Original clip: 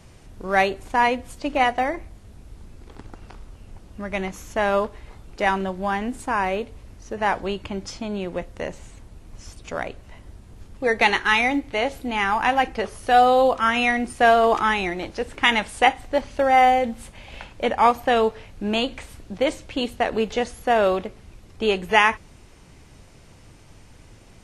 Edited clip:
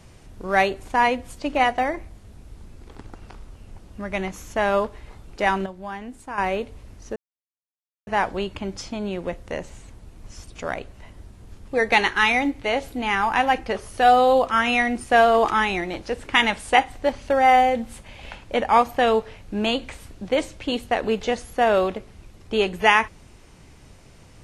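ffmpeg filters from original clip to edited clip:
ffmpeg -i in.wav -filter_complex "[0:a]asplit=4[link_01][link_02][link_03][link_04];[link_01]atrim=end=5.662[link_05];[link_02]atrim=start=5.658:end=6.382,asetpts=PTS-STARTPTS,volume=-9dB[link_06];[link_03]atrim=start=6.378:end=7.16,asetpts=PTS-STARTPTS,afade=type=out:start_time=0.778:duration=0.004:curve=hsin,apad=pad_dur=0.91[link_07];[link_04]atrim=start=7.16,asetpts=PTS-STARTPTS,afade=type=in:duration=0.004:curve=hsin[link_08];[link_05][link_06]acrossfade=duration=0.004:curve1=hsin:curve2=hsin[link_09];[link_07][link_08]concat=n=2:v=0:a=1[link_10];[link_09][link_10]acrossfade=duration=0.004:curve1=hsin:curve2=hsin" out.wav

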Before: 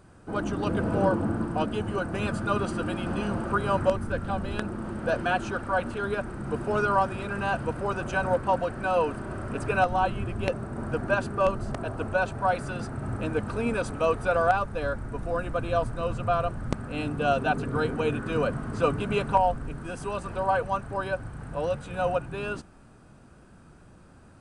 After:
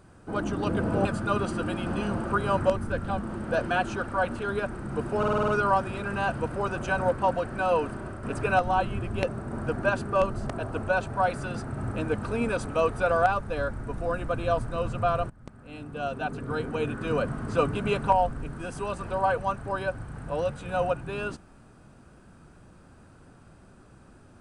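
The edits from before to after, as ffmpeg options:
ffmpeg -i in.wav -filter_complex "[0:a]asplit=11[link_01][link_02][link_03][link_04][link_05][link_06][link_07][link_08][link_09][link_10][link_11];[link_01]atrim=end=1.052[link_12];[link_02]atrim=start=2.248:end=4.412[link_13];[link_03]atrim=start=4.758:end=6.782[link_14];[link_04]atrim=start=6.728:end=6.782[link_15];[link_05]atrim=start=6.728:end=6.782[link_16];[link_06]atrim=start=6.728:end=6.782[link_17];[link_07]atrim=start=6.728:end=6.782[link_18];[link_08]atrim=start=6.728:end=6.782[link_19];[link_09]atrim=start=6.728:end=9.48,asetpts=PTS-STARTPTS,afade=type=out:start_time=2.352:duration=0.4:curve=qsin:silence=0.473151[link_20];[link_10]atrim=start=9.48:end=16.55,asetpts=PTS-STARTPTS,afade=type=in:duration=0.004:curve=hsin:silence=0.473151,afade=type=out:start_time=7.066:duration=0.004:curve=hsin:silence=0.0841395[link_21];[link_11]atrim=start=16.55,asetpts=PTS-STARTPTS,afade=type=in:duration=2.04:silence=0.0841395[link_22];[link_12][link_13]acrossfade=duration=0.004:curve1=hsin:curve2=hsin[link_23];[link_23][link_14]acrossfade=duration=0.004:curve1=hsin:curve2=hsin[link_24];[link_24][link_15]acrossfade=duration=0.004:curve1=hsin:curve2=hsin[link_25];[link_25][link_16]acrossfade=duration=0.004:curve1=hsin:curve2=hsin[link_26];[link_26][link_17]acrossfade=duration=0.004:curve1=hsin:curve2=hsin[link_27];[link_27][link_18]acrossfade=duration=0.004:curve1=hsin:curve2=hsin[link_28];[link_28][link_19]acrossfade=duration=0.004:curve1=hsin:curve2=hsin[link_29];[link_20][link_21][link_22]concat=n=3:v=0:a=1[link_30];[link_29][link_30]acrossfade=duration=0.004:curve1=hsin:curve2=hsin" out.wav

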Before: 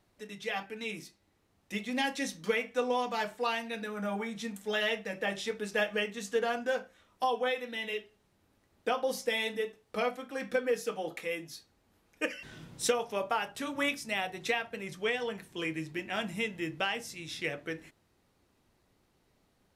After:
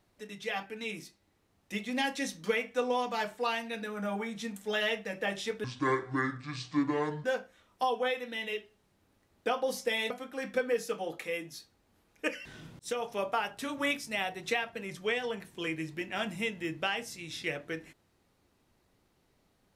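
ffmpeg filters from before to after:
ffmpeg -i in.wav -filter_complex "[0:a]asplit=5[link_01][link_02][link_03][link_04][link_05];[link_01]atrim=end=5.644[link_06];[link_02]atrim=start=5.64:end=6.65,asetpts=PTS-STARTPTS,asetrate=27783,aresample=44100[link_07];[link_03]atrim=start=6.646:end=9.512[link_08];[link_04]atrim=start=10.078:end=12.77,asetpts=PTS-STARTPTS,afade=type=out:start_time=2.688:duration=0.004:curve=hsin[link_09];[link_05]atrim=start=12.77,asetpts=PTS-STARTPTS,afade=type=in:duration=0.28[link_10];[link_06][link_07]acrossfade=duration=0.004:curve1=hsin:curve2=hsin[link_11];[link_11][link_08]acrossfade=duration=0.004:curve1=hsin:curve2=hsin[link_12];[link_09][link_10]concat=n=2:v=0:a=1[link_13];[link_12][link_13]acrossfade=duration=0.004:curve1=hsin:curve2=hsin" out.wav

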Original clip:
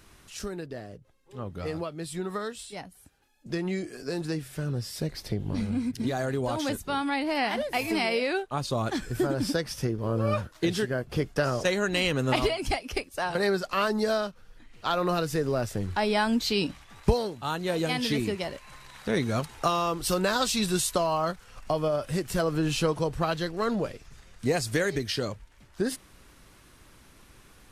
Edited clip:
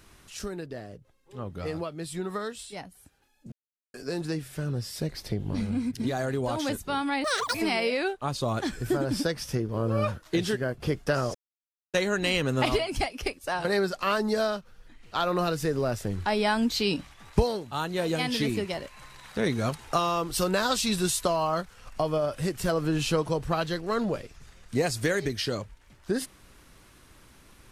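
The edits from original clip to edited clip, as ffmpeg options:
ffmpeg -i in.wav -filter_complex "[0:a]asplit=6[link_01][link_02][link_03][link_04][link_05][link_06];[link_01]atrim=end=3.52,asetpts=PTS-STARTPTS,afade=type=out:start_time=3.516:duration=0.004:curve=hsin[link_07];[link_02]atrim=start=3.52:end=3.94,asetpts=PTS-STARTPTS,volume=0[link_08];[link_03]atrim=start=3.94:end=7.244,asetpts=PTS-STARTPTS,afade=type=in:duration=0.004:curve=hsin[link_09];[link_04]atrim=start=7.24:end=7.84,asetpts=PTS-STARTPTS,asetrate=86436,aresample=44100[link_10];[link_05]atrim=start=7.836:end=11.64,asetpts=PTS-STARTPTS,afade=type=out:start_time=3.8:duration=0.004:curve=hsin,apad=pad_dur=0.59[link_11];[link_06]atrim=start=11.64,asetpts=PTS-STARTPTS,afade=type=in:duration=0.004:curve=hsin[link_12];[link_07][link_08][link_09]concat=n=3:v=0:a=1[link_13];[link_13][link_10]acrossfade=duration=0.004:curve1=hsin:curve2=hsin[link_14];[link_11][link_12]concat=n=2:v=0:a=1[link_15];[link_14][link_15]acrossfade=duration=0.004:curve1=hsin:curve2=hsin" out.wav

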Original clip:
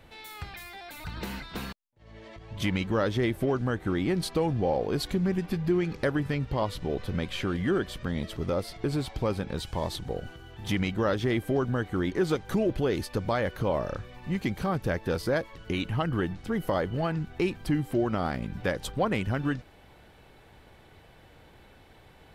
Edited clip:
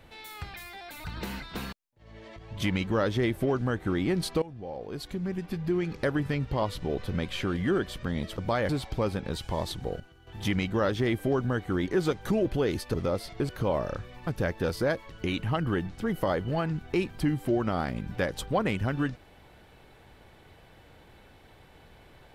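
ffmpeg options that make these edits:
ffmpeg -i in.wav -filter_complex "[0:a]asplit=9[link_01][link_02][link_03][link_04][link_05][link_06][link_07][link_08][link_09];[link_01]atrim=end=4.42,asetpts=PTS-STARTPTS,afade=type=out:start_time=4.416:duration=0.004:curve=hsin:silence=0.11885[link_10];[link_02]atrim=start=4.42:end=8.382,asetpts=PTS-STARTPTS,afade=type=in:duration=1.8:silence=0.11885[link_11];[link_03]atrim=start=13.178:end=13.492[link_12];[link_04]atrim=start=8.928:end=10.242[link_13];[link_05]atrim=start=10.238:end=10.512,asetpts=PTS-STARTPTS,volume=-10dB[link_14];[link_06]atrim=start=10.508:end=13.182[link_15];[link_07]atrim=start=8.378:end=8.932[link_16];[link_08]atrim=start=13.488:end=14.272[link_17];[link_09]atrim=start=14.728[link_18];[link_10][link_11]concat=n=2:v=0:a=1[link_19];[link_19][link_12]acrossfade=duration=0.004:curve1=hsin:curve2=hsin[link_20];[link_20][link_13]acrossfade=duration=0.004:curve1=hsin:curve2=hsin[link_21];[link_21][link_14]acrossfade=duration=0.004:curve1=hsin:curve2=hsin[link_22];[link_22][link_15]acrossfade=duration=0.004:curve1=hsin:curve2=hsin[link_23];[link_23][link_16]acrossfade=duration=0.004:curve1=hsin:curve2=hsin[link_24];[link_24][link_17]acrossfade=duration=0.004:curve1=hsin:curve2=hsin[link_25];[link_25][link_18]acrossfade=duration=0.004:curve1=hsin:curve2=hsin" out.wav

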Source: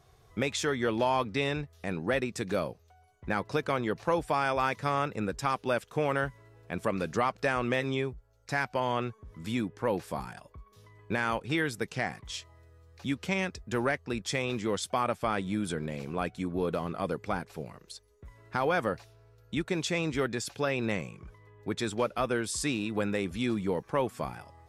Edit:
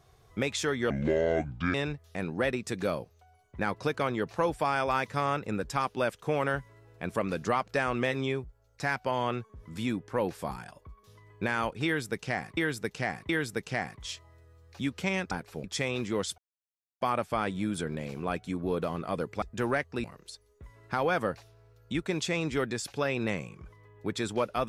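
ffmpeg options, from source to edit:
ffmpeg -i in.wav -filter_complex "[0:a]asplit=10[link_01][link_02][link_03][link_04][link_05][link_06][link_07][link_08][link_09][link_10];[link_01]atrim=end=0.904[link_11];[link_02]atrim=start=0.9:end=1.43,asetpts=PTS-STARTPTS,asetrate=27783,aresample=44100[link_12];[link_03]atrim=start=1.426:end=12.262[link_13];[link_04]atrim=start=11.538:end=12.262[link_14];[link_05]atrim=start=11.538:end=13.562[link_15];[link_06]atrim=start=17.328:end=17.662[link_16];[link_07]atrim=start=14.178:end=14.92,asetpts=PTS-STARTPTS,afade=type=out:start_time=0.738:duration=0.004:curve=hsin,apad=pad_dur=0.63[link_17];[link_08]atrim=start=14.92:end=17.332,asetpts=PTS-STARTPTS,afade=type=in:duration=0.004:curve=hsin[link_18];[link_09]atrim=start=13.558:end=14.182[link_19];[link_10]atrim=start=17.658[link_20];[link_11][link_12]acrossfade=duration=0.004:curve1=hsin:curve2=hsin[link_21];[link_21][link_13]acrossfade=duration=0.004:curve1=hsin:curve2=hsin[link_22];[link_22][link_14]acrossfade=duration=0.004:curve1=hsin:curve2=hsin[link_23];[link_23][link_15]acrossfade=duration=0.004:curve1=hsin:curve2=hsin[link_24];[link_24][link_16]acrossfade=duration=0.004:curve1=hsin:curve2=hsin[link_25];[link_17][link_18]concat=n=2:v=0:a=1[link_26];[link_25][link_26]acrossfade=duration=0.004:curve1=hsin:curve2=hsin[link_27];[link_27][link_19]acrossfade=duration=0.004:curve1=hsin:curve2=hsin[link_28];[link_28][link_20]acrossfade=duration=0.004:curve1=hsin:curve2=hsin" out.wav

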